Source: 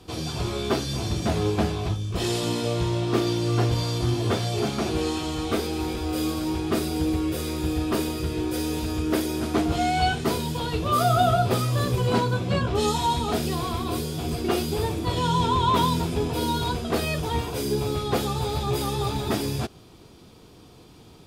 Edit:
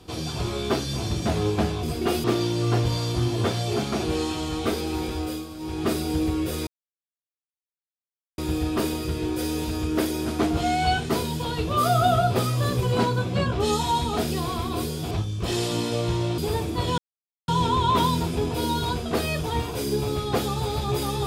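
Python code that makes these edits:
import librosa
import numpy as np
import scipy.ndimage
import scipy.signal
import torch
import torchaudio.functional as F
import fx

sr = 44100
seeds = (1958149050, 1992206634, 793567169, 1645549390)

y = fx.edit(x, sr, fx.swap(start_s=1.83, length_s=1.27, other_s=14.26, other_length_s=0.41),
    fx.fade_down_up(start_s=6.04, length_s=0.66, db=-10.0, fade_s=0.26),
    fx.insert_silence(at_s=7.53, length_s=1.71),
    fx.insert_silence(at_s=15.27, length_s=0.5), tone=tone)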